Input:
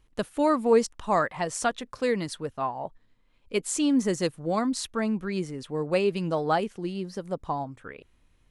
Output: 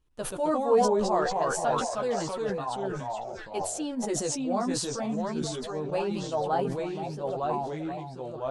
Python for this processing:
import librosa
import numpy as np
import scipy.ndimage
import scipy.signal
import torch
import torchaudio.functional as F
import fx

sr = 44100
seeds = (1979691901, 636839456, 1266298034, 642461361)

y = fx.echo_pitch(x, sr, ms=109, semitones=-2, count=2, db_per_echo=-3.0)
y = fx.peak_eq(y, sr, hz=2100.0, db=-6.5, octaves=0.35)
y = fx.chorus_voices(y, sr, voices=2, hz=0.53, base_ms=14, depth_ms=1.6, mix_pct=40)
y = fx.dynamic_eq(y, sr, hz=720.0, q=1.3, threshold_db=-41.0, ratio=4.0, max_db=8)
y = fx.echo_stepped(y, sr, ms=477, hz=680.0, octaves=1.4, feedback_pct=70, wet_db=-10.0)
y = fx.sustainer(y, sr, db_per_s=39.0)
y = y * 10.0 ** (-6.5 / 20.0)